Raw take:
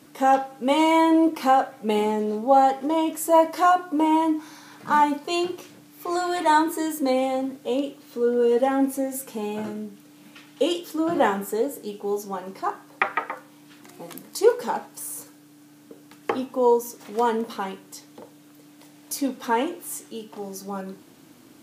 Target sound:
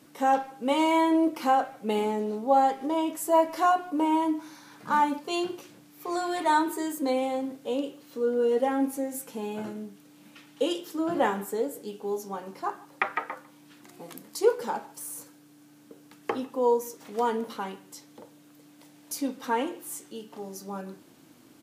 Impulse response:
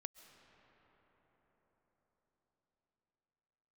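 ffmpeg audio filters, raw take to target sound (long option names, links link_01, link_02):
-filter_complex "[0:a]asplit=2[link_01][link_02];[link_02]adelay=150,highpass=300,lowpass=3400,asoftclip=type=hard:threshold=-14dB,volume=-22dB[link_03];[link_01][link_03]amix=inputs=2:normalize=0,volume=-4.5dB"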